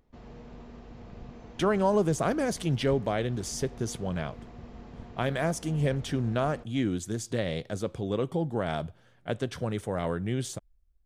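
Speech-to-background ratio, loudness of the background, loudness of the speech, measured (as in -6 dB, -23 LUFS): 17.0 dB, -47.0 LUFS, -30.0 LUFS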